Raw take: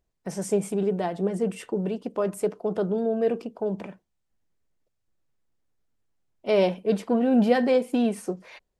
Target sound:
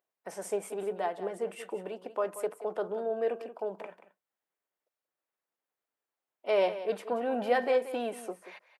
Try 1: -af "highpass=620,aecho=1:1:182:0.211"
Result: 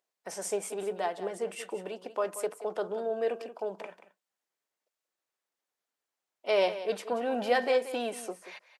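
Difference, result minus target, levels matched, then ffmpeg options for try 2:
8000 Hz band +6.5 dB
-af "highpass=620,equalizer=f=5.7k:w=0.64:g=-9.5,aecho=1:1:182:0.211"

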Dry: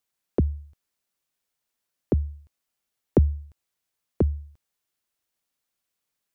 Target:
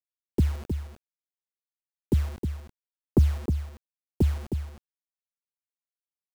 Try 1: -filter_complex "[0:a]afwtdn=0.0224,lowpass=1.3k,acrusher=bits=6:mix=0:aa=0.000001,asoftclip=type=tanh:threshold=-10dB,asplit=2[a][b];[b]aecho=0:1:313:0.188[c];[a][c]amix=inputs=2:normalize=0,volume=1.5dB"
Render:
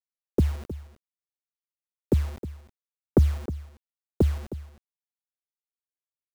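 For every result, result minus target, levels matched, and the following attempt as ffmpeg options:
echo-to-direct -7 dB; 500 Hz band +3.5 dB
-filter_complex "[0:a]afwtdn=0.0224,lowpass=1.3k,acrusher=bits=6:mix=0:aa=0.000001,asoftclip=type=tanh:threshold=-10dB,asplit=2[a][b];[b]aecho=0:1:313:0.422[c];[a][c]amix=inputs=2:normalize=0,volume=1.5dB"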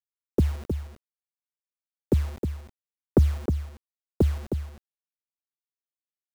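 500 Hz band +4.5 dB
-filter_complex "[0:a]afwtdn=0.0224,lowpass=1.3k,equalizer=f=560:w=1.6:g=-13,acrusher=bits=6:mix=0:aa=0.000001,asoftclip=type=tanh:threshold=-10dB,asplit=2[a][b];[b]aecho=0:1:313:0.422[c];[a][c]amix=inputs=2:normalize=0,volume=1.5dB"

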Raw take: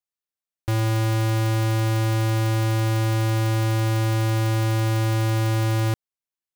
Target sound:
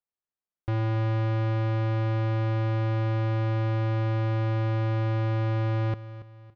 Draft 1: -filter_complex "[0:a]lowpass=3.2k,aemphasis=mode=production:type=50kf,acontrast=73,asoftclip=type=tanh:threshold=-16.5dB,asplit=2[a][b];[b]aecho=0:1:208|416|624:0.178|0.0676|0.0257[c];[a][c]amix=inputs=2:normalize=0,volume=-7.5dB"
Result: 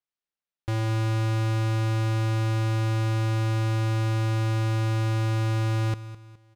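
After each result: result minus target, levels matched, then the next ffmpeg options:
4000 Hz band +6.0 dB; echo 73 ms early
-filter_complex "[0:a]lowpass=1.4k,aemphasis=mode=production:type=50kf,acontrast=73,asoftclip=type=tanh:threshold=-16.5dB,asplit=2[a][b];[b]aecho=0:1:208|416|624:0.178|0.0676|0.0257[c];[a][c]amix=inputs=2:normalize=0,volume=-7.5dB"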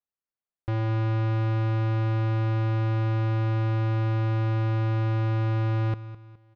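echo 73 ms early
-filter_complex "[0:a]lowpass=1.4k,aemphasis=mode=production:type=50kf,acontrast=73,asoftclip=type=tanh:threshold=-16.5dB,asplit=2[a][b];[b]aecho=0:1:281|562|843:0.178|0.0676|0.0257[c];[a][c]amix=inputs=2:normalize=0,volume=-7.5dB"

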